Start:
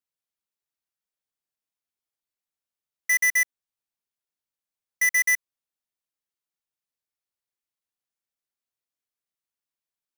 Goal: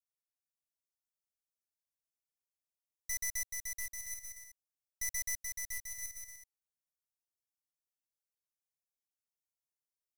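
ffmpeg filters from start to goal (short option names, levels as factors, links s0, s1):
-filter_complex "[0:a]firequalizer=gain_entry='entry(110,0);entry(260,-16);entry(610,-2);entry(1600,-24);entry(2700,-28);entry(5200,0)':delay=0.05:min_phase=1,aeval=exprs='(tanh(39.8*val(0)+0.75)-tanh(0.75))/39.8':c=same,asplit=2[s0][s1];[s1]acrusher=bits=7:mix=0:aa=0.000001,volume=0.355[s2];[s0][s2]amix=inputs=2:normalize=0,aecho=1:1:430|709.5|891.2|1009|1086:0.631|0.398|0.251|0.158|0.1,volume=0.708"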